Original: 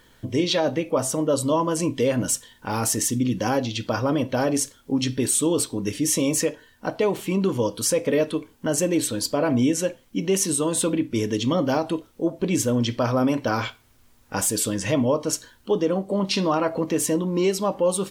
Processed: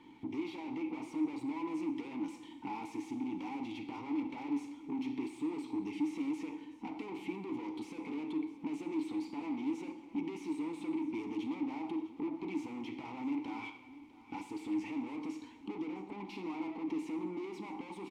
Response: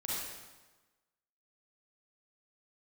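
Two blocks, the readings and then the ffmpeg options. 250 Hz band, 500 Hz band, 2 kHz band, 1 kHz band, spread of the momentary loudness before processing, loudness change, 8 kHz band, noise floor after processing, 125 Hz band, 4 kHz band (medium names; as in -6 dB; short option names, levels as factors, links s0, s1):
-12.0 dB, -23.0 dB, -16.5 dB, -16.0 dB, 6 LU, -16.0 dB, under -35 dB, -54 dBFS, -27.0 dB, -24.5 dB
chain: -filter_complex "[0:a]acrossover=split=320|3000[s0][s1][s2];[s0]acompressor=threshold=0.0158:ratio=6[s3];[s3][s1][s2]amix=inputs=3:normalize=0,aeval=exprs='(tanh(79.4*val(0)+0.65)-tanh(0.65))/79.4':c=same,acompressor=threshold=0.00794:ratio=6,asplit=3[s4][s5][s6];[s4]bandpass=f=300:t=q:w=8,volume=1[s7];[s5]bandpass=f=870:t=q:w=8,volume=0.501[s8];[s6]bandpass=f=2240:t=q:w=8,volume=0.355[s9];[s7][s8][s9]amix=inputs=3:normalize=0,lowshelf=f=200:g=3.5,aecho=1:1:653:0.133,asplit=2[s10][s11];[1:a]atrim=start_sample=2205[s12];[s11][s12]afir=irnorm=-1:irlink=0,volume=0.266[s13];[s10][s13]amix=inputs=2:normalize=0,volume=5.01"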